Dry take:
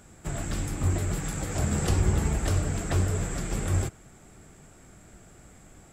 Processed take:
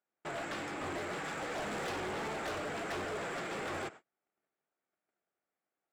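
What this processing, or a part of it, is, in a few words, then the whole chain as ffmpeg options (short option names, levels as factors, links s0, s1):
walkie-talkie: -af "highpass=470,lowpass=2900,asoftclip=type=hard:threshold=0.0106,agate=range=0.0158:threshold=0.002:ratio=16:detection=peak,volume=1.58"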